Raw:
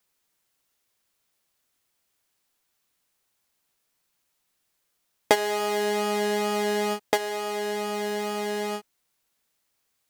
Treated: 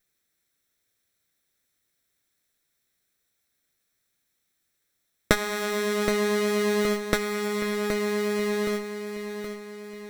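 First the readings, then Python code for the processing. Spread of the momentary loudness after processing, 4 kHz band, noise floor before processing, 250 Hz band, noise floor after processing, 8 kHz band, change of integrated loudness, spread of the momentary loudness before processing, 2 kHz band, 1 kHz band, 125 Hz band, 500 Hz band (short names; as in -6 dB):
10 LU, -1.0 dB, -75 dBFS, +5.0 dB, -77 dBFS, +0.5 dB, 0.0 dB, 6 LU, +2.5 dB, -5.0 dB, n/a, +1.0 dB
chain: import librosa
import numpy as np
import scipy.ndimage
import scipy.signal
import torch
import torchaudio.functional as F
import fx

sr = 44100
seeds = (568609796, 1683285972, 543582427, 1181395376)

y = fx.lower_of_two(x, sr, delay_ms=0.53)
y = fx.echo_feedback(y, sr, ms=771, feedback_pct=51, wet_db=-9.0)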